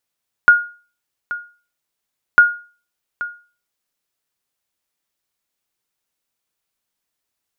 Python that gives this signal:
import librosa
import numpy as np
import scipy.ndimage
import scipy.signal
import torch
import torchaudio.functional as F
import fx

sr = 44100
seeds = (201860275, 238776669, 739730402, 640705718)

y = fx.sonar_ping(sr, hz=1430.0, decay_s=0.37, every_s=1.9, pings=2, echo_s=0.83, echo_db=-16.0, level_db=-1.5)